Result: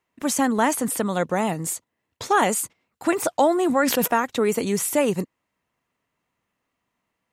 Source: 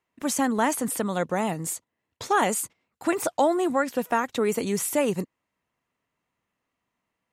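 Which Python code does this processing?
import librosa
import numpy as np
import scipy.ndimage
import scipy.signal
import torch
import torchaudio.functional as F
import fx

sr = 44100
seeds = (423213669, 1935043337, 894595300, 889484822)

y = fx.sustainer(x, sr, db_per_s=42.0, at=(3.65, 4.06), fade=0.02)
y = y * librosa.db_to_amplitude(3.0)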